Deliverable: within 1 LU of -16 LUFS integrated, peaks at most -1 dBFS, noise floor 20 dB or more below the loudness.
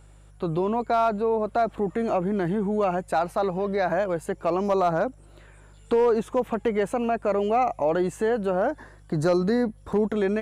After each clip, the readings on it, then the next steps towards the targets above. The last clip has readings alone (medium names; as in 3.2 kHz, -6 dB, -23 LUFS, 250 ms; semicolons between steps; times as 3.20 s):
clipped samples 0.2%; clipping level -14.5 dBFS; hum 50 Hz; highest harmonic 150 Hz; hum level -49 dBFS; loudness -25.0 LUFS; peak level -14.5 dBFS; loudness target -16.0 LUFS
-> clip repair -14.5 dBFS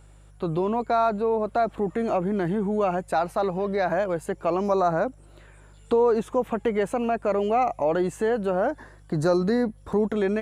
clipped samples 0.0%; hum 50 Hz; highest harmonic 150 Hz; hum level -48 dBFS
-> de-hum 50 Hz, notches 3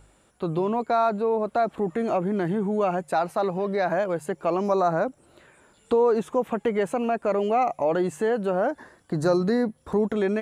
hum not found; loudness -25.0 LUFS; peak level -10.5 dBFS; loudness target -16.0 LUFS
-> trim +9 dB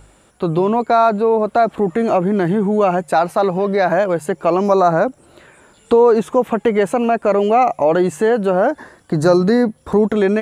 loudness -16.0 LUFS; peak level -1.5 dBFS; noise floor -52 dBFS